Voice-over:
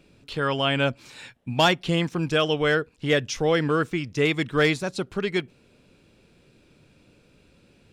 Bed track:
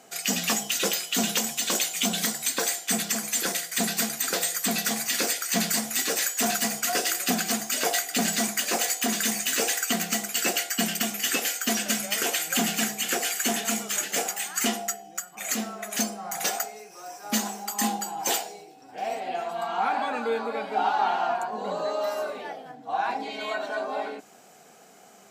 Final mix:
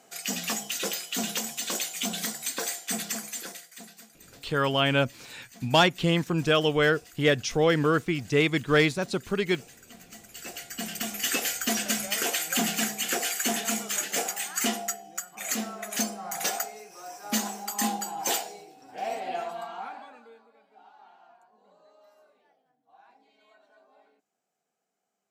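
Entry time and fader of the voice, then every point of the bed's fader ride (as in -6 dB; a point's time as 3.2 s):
4.15 s, -0.5 dB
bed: 3.16 s -5 dB
4.08 s -26 dB
9.83 s -26 dB
11.25 s -1.5 dB
19.43 s -1.5 dB
20.52 s -30.5 dB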